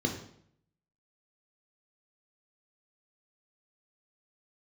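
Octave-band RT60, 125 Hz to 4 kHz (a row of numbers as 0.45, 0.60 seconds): 0.85, 0.75, 0.65, 0.65, 0.60, 0.55 seconds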